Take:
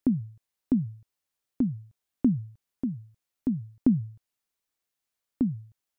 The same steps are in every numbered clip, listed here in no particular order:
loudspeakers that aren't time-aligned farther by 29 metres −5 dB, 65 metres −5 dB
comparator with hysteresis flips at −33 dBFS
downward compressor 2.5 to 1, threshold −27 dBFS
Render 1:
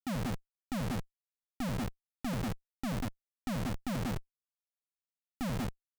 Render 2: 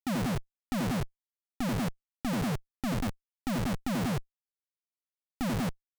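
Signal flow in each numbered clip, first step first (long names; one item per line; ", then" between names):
downward compressor, then loudspeakers that aren't time-aligned, then comparator with hysteresis
loudspeakers that aren't time-aligned, then comparator with hysteresis, then downward compressor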